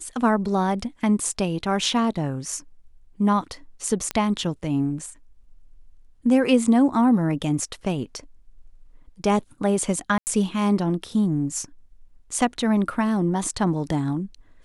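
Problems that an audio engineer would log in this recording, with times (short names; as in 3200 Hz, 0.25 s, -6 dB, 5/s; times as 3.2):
4.11 pop -10 dBFS
10.18–10.27 gap 89 ms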